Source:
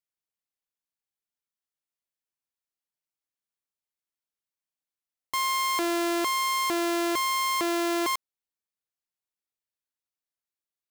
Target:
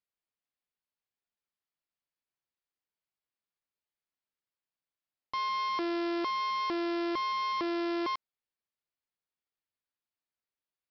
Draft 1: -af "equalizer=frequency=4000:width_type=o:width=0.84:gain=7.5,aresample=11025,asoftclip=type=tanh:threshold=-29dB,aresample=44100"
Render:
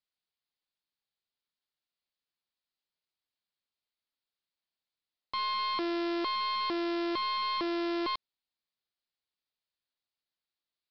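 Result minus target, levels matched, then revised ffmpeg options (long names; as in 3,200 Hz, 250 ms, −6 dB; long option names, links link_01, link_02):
4,000 Hz band +4.0 dB
-af "equalizer=frequency=4000:width_type=o:width=0.84:gain=-3,aresample=11025,asoftclip=type=tanh:threshold=-29dB,aresample=44100"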